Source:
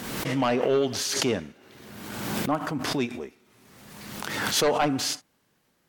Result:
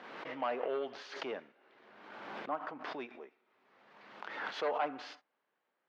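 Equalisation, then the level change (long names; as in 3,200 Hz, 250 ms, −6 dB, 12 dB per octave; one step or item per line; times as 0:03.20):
high-pass filter 580 Hz 12 dB per octave
low-pass filter 2,100 Hz 6 dB per octave
high-frequency loss of the air 260 metres
−6.0 dB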